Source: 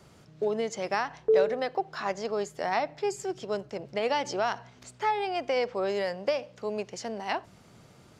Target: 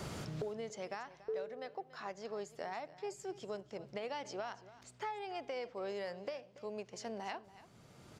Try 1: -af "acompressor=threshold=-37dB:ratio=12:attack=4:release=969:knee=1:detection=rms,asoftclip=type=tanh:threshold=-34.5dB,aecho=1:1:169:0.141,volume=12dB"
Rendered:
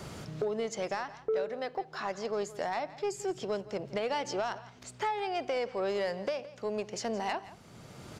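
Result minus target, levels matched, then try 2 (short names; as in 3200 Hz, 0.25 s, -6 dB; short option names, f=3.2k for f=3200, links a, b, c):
compressor: peak gain reduction -10 dB; echo 0.115 s early
-af "acompressor=threshold=-48dB:ratio=12:attack=4:release=969:knee=1:detection=rms,asoftclip=type=tanh:threshold=-34.5dB,aecho=1:1:284:0.141,volume=12dB"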